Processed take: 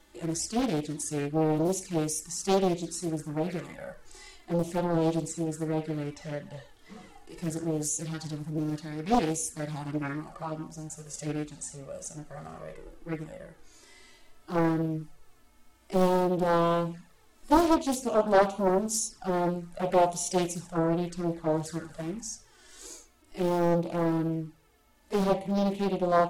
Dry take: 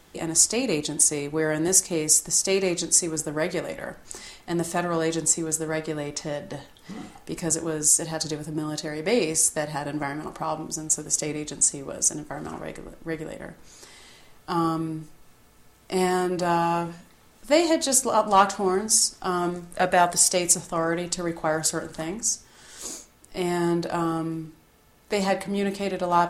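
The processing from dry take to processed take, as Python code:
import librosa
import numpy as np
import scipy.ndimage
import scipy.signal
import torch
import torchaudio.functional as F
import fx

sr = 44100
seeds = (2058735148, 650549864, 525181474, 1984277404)

y = fx.hpss(x, sr, part='percussive', gain_db=-17)
y = fx.env_flanger(y, sr, rest_ms=3.6, full_db=-25.0)
y = fx.doppler_dist(y, sr, depth_ms=0.88)
y = F.gain(torch.from_numpy(y), 1.0).numpy()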